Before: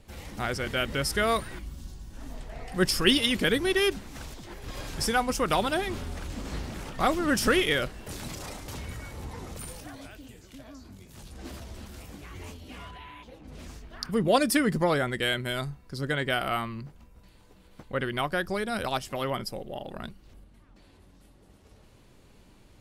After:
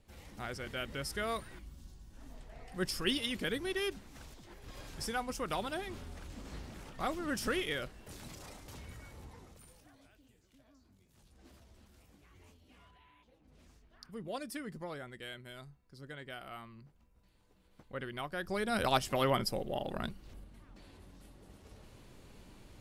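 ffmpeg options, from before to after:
-af "volume=8dB,afade=t=out:st=9.13:d=0.47:silence=0.421697,afade=t=in:st=16.5:d=1.32:silence=0.446684,afade=t=in:st=18.35:d=0.59:silence=0.251189"

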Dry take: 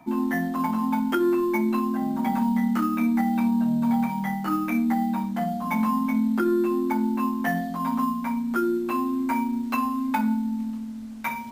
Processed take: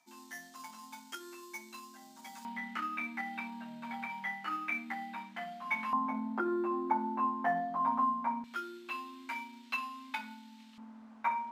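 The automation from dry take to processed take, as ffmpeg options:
-af "asetnsamples=n=441:p=0,asendcmd='2.45 bandpass f 2300;5.93 bandpass f 870;8.44 bandpass f 3200;10.78 bandpass f 1000',bandpass=f=6.2k:t=q:w=1.6:csg=0"

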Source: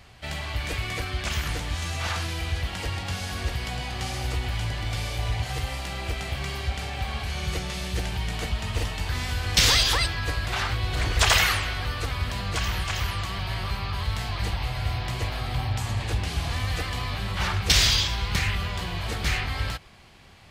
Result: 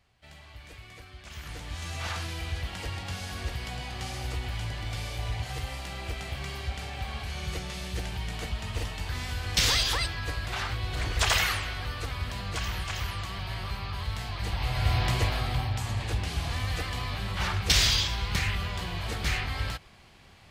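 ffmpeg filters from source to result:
-af "volume=4dB,afade=t=in:st=1.26:d=0.73:silence=0.237137,afade=t=in:st=14.43:d=0.61:silence=0.354813,afade=t=out:st=15.04:d=0.67:silence=0.446684"

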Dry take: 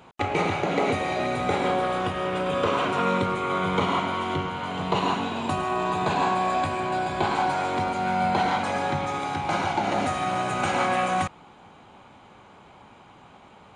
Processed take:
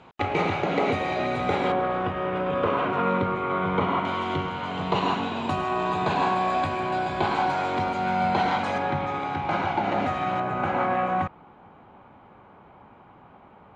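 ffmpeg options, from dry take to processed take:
-af "asetnsamples=n=441:p=0,asendcmd='1.72 lowpass f 2200;4.05 lowpass f 5100;8.78 lowpass f 2900;10.4 lowpass f 1700',lowpass=4.6k"

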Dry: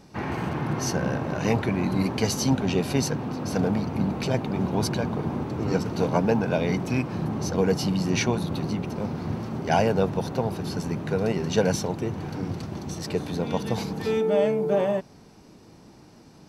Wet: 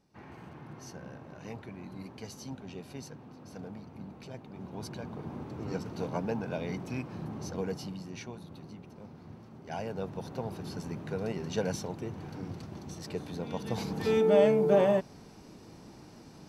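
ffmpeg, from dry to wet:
-af "volume=7.5dB,afade=t=in:st=4.49:d=1.01:silence=0.375837,afade=t=out:st=7.52:d=0.6:silence=0.398107,afade=t=in:st=9.6:d=0.96:silence=0.334965,afade=t=in:st=13.58:d=0.71:silence=0.354813"

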